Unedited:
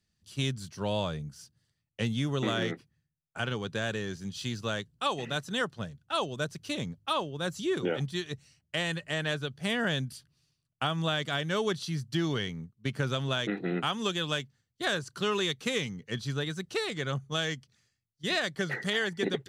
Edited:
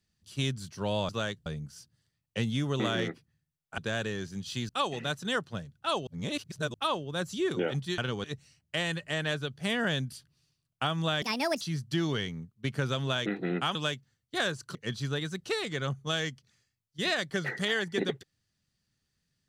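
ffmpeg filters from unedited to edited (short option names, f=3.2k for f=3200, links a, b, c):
-filter_complex "[0:a]asplit=13[a][b][c][d][e][f][g][h][i][j][k][l][m];[a]atrim=end=1.092[n];[b]atrim=start=4.578:end=4.952[o];[c]atrim=start=1.088:end=3.412[p];[d]atrim=start=3.668:end=4.582[q];[e]atrim=start=4.948:end=6.332[r];[f]atrim=start=6.328:end=7.002,asetpts=PTS-STARTPTS,areverse[s];[g]atrim=start=6.998:end=8.242[t];[h]atrim=start=3.408:end=3.672[u];[i]atrim=start=8.238:end=11.224[v];[j]atrim=start=11.22:end=11.82,asetpts=PTS-STARTPTS,asetrate=67914,aresample=44100[w];[k]atrim=start=11.816:end=13.962[x];[l]atrim=start=14.218:end=15.222[y];[m]atrim=start=15.998[z];[n][o]acrossfade=d=0.004:c1=hsin:c2=hsin[aa];[aa][p]acrossfade=d=0.004:c1=hsin:c2=hsin[ab];[ab][q]acrossfade=d=0.004:c1=hsin:c2=hsin[ac];[ac][r]acrossfade=d=0.004:c1=hsin:c2=hsin[ad];[ad][s]acrossfade=d=0.004:c1=hsin:c2=hsin[ae];[ae][t]acrossfade=d=0.004:c1=hsin:c2=hsin[af];[af][u]acrossfade=d=0.004:c1=hsin:c2=hsin[ag];[ag][v]acrossfade=d=0.004:c1=hsin:c2=hsin[ah];[ah][w]acrossfade=d=0.004:c1=hsin:c2=hsin[ai];[ai][x]acrossfade=d=0.004:c1=hsin:c2=hsin[aj];[aj][y]acrossfade=d=0.004:c1=hsin:c2=hsin[ak];[ak][z]acrossfade=d=0.004:c1=hsin:c2=hsin"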